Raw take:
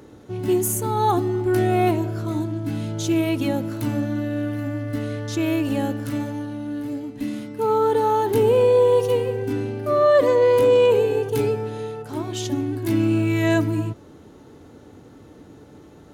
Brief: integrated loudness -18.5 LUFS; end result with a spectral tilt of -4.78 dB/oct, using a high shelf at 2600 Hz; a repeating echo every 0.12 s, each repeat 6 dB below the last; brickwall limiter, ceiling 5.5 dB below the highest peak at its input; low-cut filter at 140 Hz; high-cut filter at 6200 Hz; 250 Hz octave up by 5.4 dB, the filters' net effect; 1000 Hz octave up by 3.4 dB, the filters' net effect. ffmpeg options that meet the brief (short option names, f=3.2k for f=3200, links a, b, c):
-af "highpass=140,lowpass=6.2k,equalizer=f=250:t=o:g=7.5,equalizer=f=1k:t=o:g=3,highshelf=f=2.6k:g=5,alimiter=limit=-10.5dB:level=0:latency=1,aecho=1:1:120|240|360|480|600|720:0.501|0.251|0.125|0.0626|0.0313|0.0157"